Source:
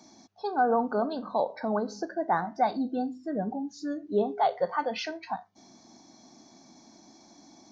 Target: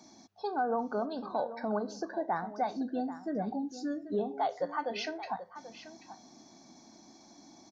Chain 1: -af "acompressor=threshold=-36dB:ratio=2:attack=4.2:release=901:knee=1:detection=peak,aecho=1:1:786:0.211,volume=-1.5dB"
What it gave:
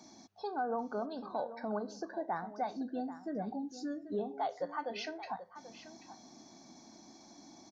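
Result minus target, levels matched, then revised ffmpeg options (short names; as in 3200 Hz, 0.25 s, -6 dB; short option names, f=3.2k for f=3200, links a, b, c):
compressor: peak gain reduction +4 dB
-af "acompressor=threshold=-27.5dB:ratio=2:attack=4.2:release=901:knee=1:detection=peak,aecho=1:1:786:0.211,volume=-1.5dB"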